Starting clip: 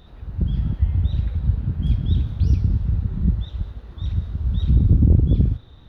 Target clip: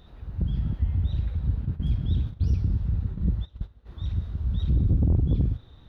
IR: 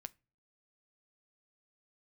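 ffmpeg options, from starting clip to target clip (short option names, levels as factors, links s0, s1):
-filter_complex "[0:a]asplit=3[s0][s1][s2];[s0]afade=t=out:st=1.64:d=0.02[s3];[s1]agate=range=0.178:threshold=0.0631:ratio=16:detection=peak,afade=t=in:st=1.64:d=0.02,afade=t=out:st=3.85:d=0.02[s4];[s2]afade=t=in:st=3.85:d=0.02[s5];[s3][s4][s5]amix=inputs=3:normalize=0,asoftclip=type=tanh:threshold=0.299,volume=0.631"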